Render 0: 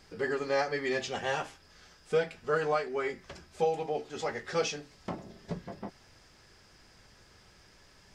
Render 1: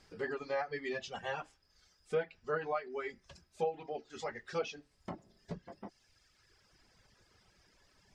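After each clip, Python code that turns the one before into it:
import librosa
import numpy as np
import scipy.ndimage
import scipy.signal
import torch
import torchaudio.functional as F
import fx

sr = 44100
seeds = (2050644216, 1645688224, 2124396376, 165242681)

y = fx.env_lowpass_down(x, sr, base_hz=2700.0, full_db=-24.5)
y = fx.dereverb_blind(y, sr, rt60_s=1.6)
y = y * 10.0 ** (-5.5 / 20.0)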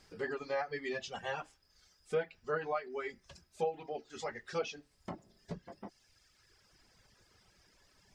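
y = fx.high_shelf(x, sr, hz=7200.0, db=5.5)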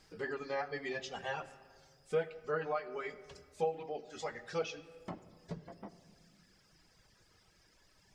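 y = fx.room_shoebox(x, sr, seeds[0], volume_m3=3700.0, walls='mixed', distance_m=0.59)
y = y * 10.0 ** (-1.0 / 20.0)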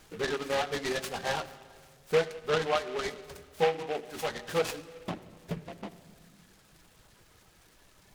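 y = fx.noise_mod_delay(x, sr, seeds[1], noise_hz=1800.0, depth_ms=0.078)
y = y * 10.0 ** (7.5 / 20.0)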